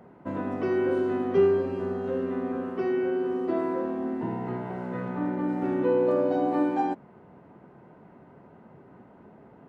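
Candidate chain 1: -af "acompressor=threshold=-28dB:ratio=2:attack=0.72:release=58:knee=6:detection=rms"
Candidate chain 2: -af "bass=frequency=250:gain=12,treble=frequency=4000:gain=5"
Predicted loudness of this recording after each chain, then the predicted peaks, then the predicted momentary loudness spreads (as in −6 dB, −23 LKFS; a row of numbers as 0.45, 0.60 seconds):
−31.5, −24.0 LKFS; −19.5, −8.5 dBFS; 6, 6 LU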